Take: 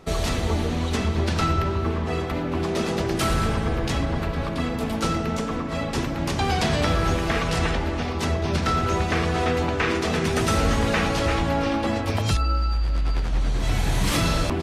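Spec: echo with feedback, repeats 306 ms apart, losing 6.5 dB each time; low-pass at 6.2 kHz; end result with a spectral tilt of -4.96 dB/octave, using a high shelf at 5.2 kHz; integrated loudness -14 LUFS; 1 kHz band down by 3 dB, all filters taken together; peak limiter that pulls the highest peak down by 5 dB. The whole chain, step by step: low-pass 6.2 kHz; peaking EQ 1 kHz -4.5 dB; treble shelf 5.2 kHz +3.5 dB; peak limiter -16 dBFS; feedback delay 306 ms, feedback 47%, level -6.5 dB; trim +11 dB

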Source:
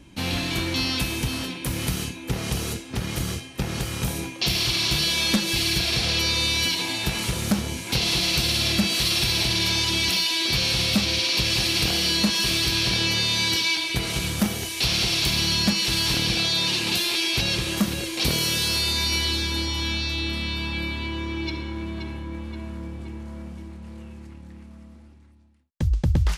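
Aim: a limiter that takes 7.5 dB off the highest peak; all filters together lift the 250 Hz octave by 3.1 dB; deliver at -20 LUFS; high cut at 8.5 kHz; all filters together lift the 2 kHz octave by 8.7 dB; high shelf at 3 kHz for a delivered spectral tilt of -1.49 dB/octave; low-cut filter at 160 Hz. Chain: high-pass 160 Hz; low-pass 8.5 kHz; peaking EQ 250 Hz +5.5 dB; peaking EQ 2 kHz +8 dB; treble shelf 3 kHz +7 dB; trim -1.5 dB; peak limiter -12.5 dBFS

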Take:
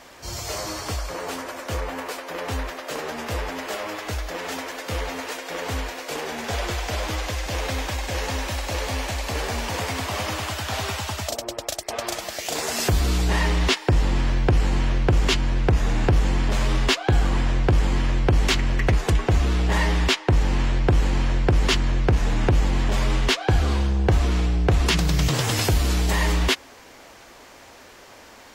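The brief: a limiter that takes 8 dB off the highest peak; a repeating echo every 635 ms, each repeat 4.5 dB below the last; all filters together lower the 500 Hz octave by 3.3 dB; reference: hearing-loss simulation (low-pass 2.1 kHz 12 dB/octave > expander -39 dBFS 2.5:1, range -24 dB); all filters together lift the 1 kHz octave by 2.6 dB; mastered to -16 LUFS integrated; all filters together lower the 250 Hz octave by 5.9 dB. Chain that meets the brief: peaking EQ 250 Hz -8.5 dB; peaking EQ 500 Hz -3 dB; peaking EQ 1 kHz +5 dB; peak limiter -14.5 dBFS; low-pass 2.1 kHz 12 dB/octave; feedback delay 635 ms, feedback 60%, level -4.5 dB; expander -39 dBFS 2.5:1, range -24 dB; trim +9.5 dB

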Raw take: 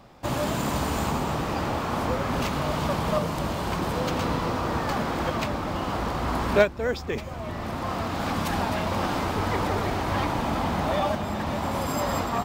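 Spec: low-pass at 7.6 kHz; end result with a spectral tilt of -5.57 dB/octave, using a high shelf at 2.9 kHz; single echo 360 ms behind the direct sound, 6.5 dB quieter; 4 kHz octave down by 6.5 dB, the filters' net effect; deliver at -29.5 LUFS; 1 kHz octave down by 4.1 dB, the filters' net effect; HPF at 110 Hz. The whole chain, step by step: high-pass 110 Hz; low-pass 7.6 kHz; peaking EQ 1 kHz -4.5 dB; treble shelf 2.9 kHz -4.5 dB; peaking EQ 4 kHz -4.5 dB; delay 360 ms -6.5 dB; trim -1 dB

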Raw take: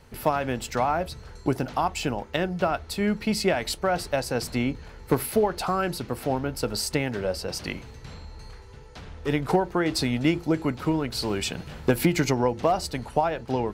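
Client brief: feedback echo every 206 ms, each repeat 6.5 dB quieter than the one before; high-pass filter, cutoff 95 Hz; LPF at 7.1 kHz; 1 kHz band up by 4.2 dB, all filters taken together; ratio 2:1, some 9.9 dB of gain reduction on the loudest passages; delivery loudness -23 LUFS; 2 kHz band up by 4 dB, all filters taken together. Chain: high-pass 95 Hz; low-pass 7.1 kHz; peaking EQ 1 kHz +5 dB; peaking EQ 2 kHz +3.5 dB; compression 2:1, threshold -34 dBFS; feedback delay 206 ms, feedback 47%, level -6.5 dB; trim +9 dB

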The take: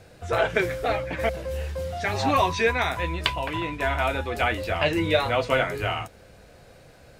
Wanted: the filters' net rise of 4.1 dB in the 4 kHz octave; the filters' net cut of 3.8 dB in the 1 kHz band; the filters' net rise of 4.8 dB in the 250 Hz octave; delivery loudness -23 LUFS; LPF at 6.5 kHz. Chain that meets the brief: low-pass 6.5 kHz; peaking EQ 250 Hz +7 dB; peaking EQ 1 kHz -6 dB; peaking EQ 4 kHz +6 dB; trim +1.5 dB

